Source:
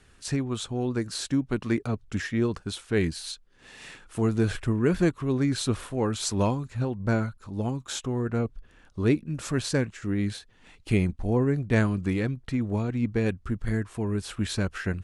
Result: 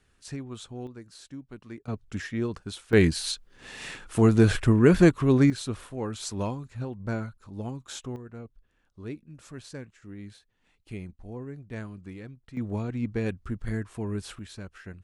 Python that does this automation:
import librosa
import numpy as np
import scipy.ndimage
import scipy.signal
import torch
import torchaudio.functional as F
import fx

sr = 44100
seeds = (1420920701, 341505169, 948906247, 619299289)

y = fx.gain(x, sr, db=fx.steps((0.0, -9.0), (0.87, -16.0), (1.88, -4.0), (2.93, 5.5), (5.5, -6.0), (8.16, -15.0), (12.57, -3.5), (14.39, -13.5)))